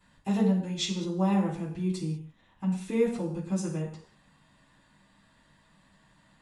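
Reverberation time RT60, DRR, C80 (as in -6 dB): not exponential, -11.0 dB, 9.5 dB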